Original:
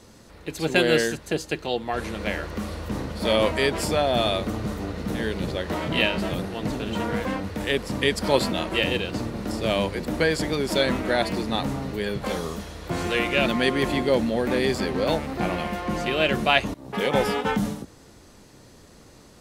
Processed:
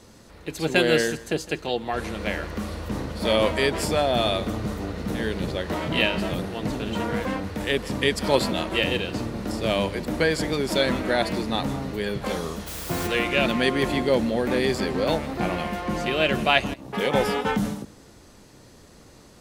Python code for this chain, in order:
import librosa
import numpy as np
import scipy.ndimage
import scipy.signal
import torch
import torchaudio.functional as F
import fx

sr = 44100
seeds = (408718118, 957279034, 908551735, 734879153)

y = fx.quant_dither(x, sr, seeds[0], bits=6, dither='triangular', at=(12.66, 13.06), fade=0.02)
y = y + 10.0 ** (-19.5 / 20.0) * np.pad(y, (int(160 * sr / 1000.0), 0))[:len(y)]